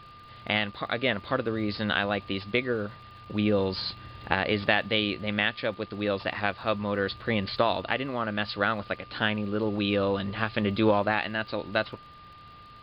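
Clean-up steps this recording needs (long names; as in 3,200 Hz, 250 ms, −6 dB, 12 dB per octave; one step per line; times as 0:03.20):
click removal
notch filter 1,200 Hz, Q 30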